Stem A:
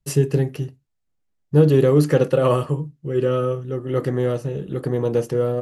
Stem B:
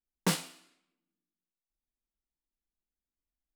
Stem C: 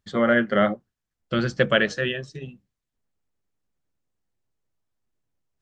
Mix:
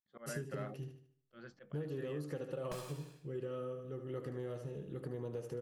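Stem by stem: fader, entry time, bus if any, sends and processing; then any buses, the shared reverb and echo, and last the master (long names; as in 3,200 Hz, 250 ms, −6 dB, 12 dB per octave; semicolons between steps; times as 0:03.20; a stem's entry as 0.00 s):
−16.5 dB, 0.20 s, no send, echo send −9.5 dB, no processing
+2.0 dB, 2.45 s, no send, no echo send, lower of the sound and its delayed copy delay 1.2 ms; brickwall limiter −21 dBFS, peak gain reduction 4.5 dB; downward compressor, threshold −39 dBFS, peak gain reduction 11 dB
−18.5 dB, 0.00 s, no send, no echo send, noise gate −45 dBFS, range −12 dB; volume swells 427 ms; mid-hump overdrive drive 15 dB, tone 1,200 Hz, clips at −7 dBFS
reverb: not used
echo: repeating echo 75 ms, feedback 41%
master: downward compressor 6 to 1, threshold −38 dBFS, peak gain reduction 12 dB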